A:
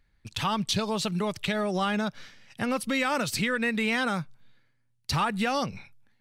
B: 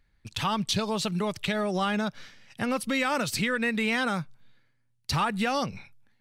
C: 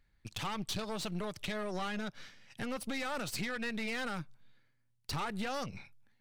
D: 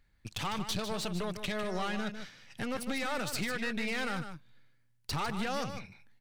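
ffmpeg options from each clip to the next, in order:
-af anull
-af "acompressor=threshold=0.0126:ratio=1.5,aeval=exprs='(tanh(39.8*val(0)+0.7)-tanh(0.7))/39.8':c=same"
-af "aecho=1:1:151:0.355,volume=1.33"

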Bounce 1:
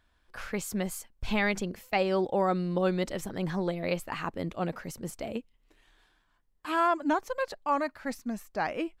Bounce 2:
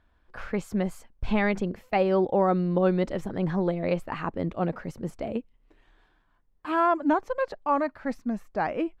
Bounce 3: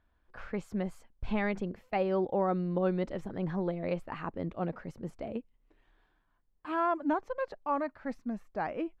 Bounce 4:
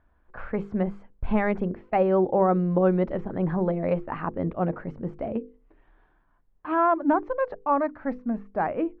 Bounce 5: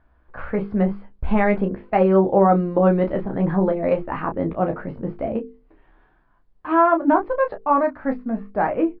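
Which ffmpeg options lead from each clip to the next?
-af "lowpass=f=1200:p=1,volume=1.78"
-af "highshelf=f=6300:g=-7.5,volume=0.473"
-af "lowpass=1700,bandreject=f=50:t=h:w=6,bandreject=f=100:t=h:w=6,bandreject=f=150:t=h:w=6,bandreject=f=200:t=h:w=6,bandreject=f=250:t=h:w=6,bandreject=f=300:t=h:w=6,bandreject=f=350:t=h:w=6,bandreject=f=400:t=h:w=6,bandreject=f=450:t=h:w=6,bandreject=f=500:t=h:w=6,volume=2.66"
-filter_complex "[0:a]asplit=2[s0][s1];[s1]aecho=0:1:15|31:0.473|0.398[s2];[s0][s2]amix=inputs=2:normalize=0,aresample=11025,aresample=44100,volume=1.58"

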